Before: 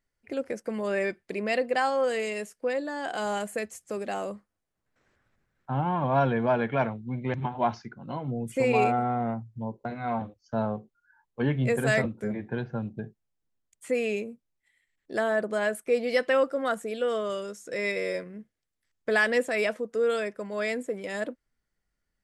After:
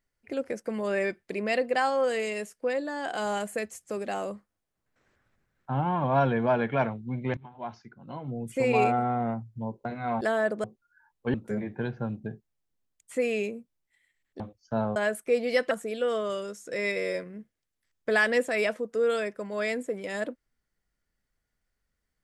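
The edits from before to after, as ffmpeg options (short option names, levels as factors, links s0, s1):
-filter_complex "[0:a]asplit=8[s0][s1][s2][s3][s4][s5][s6][s7];[s0]atrim=end=7.37,asetpts=PTS-STARTPTS,afade=t=out:st=7.366:d=0.004:c=hsin:silence=0.0944061[s8];[s1]atrim=start=7.37:end=10.212,asetpts=PTS-STARTPTS,afade=t=in:d=1.44:silence=0.0944061[s9];[s2]atrim=start=15.128:end=15.562[s10];[s3]atrim=start=10.768:end=11.472[s11];[s4]atrim=start=12.068:end=15.132[s12];[s5]atrim=start=10.208:end=10.772[s13];[s6]atrim=start=15.558:end=16.312[s14];[s7]atrim=start=16.708[s15];[s8][s9]concat=n=2:v=0:a=1[s16];[s16][s10]acrossfade=d=0.004:c1=hsin:c2=hsin[s17];[s17][s11]acrossfade=d=0.004:c1=hsin:c2=hsin[s18];[s18][s12]acrossfade=d=0.004:c1=hsin:c2=hsin[s19];[s19][s13]acrossfade=d=0.004:c1=hsin:c2=hsin[s20];[s20][s14]acrossfade=d=0.004:c1=hsin:c2=hsin[s21];[s21][s15]acrossfade=d=0.004:c1=hsin:c2=hsin"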